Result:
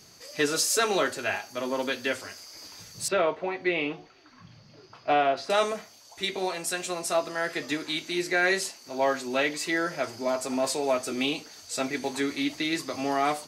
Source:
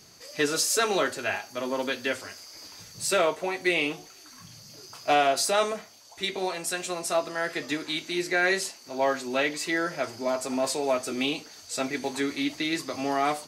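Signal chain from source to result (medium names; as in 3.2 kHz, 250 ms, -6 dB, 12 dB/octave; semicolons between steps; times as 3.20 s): 3.08–5.50 s: distance through air 280 m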